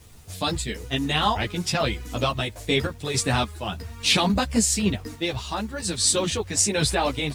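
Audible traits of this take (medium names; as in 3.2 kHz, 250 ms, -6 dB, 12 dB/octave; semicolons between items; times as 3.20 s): random-step tremolo, depth 55%; a quantiser's noise floor 10-bit, dither none; a shimmering, thickened sound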